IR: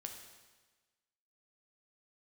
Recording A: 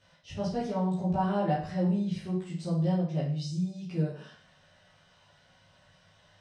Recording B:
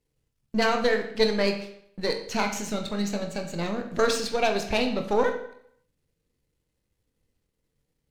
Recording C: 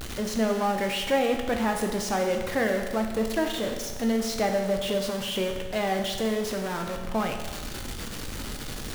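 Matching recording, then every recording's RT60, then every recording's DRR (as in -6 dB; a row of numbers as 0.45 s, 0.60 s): C; 0.50 s, 0.70 s, 1.3 s; -7.5 dB, 4.5 dB, 3.0 dB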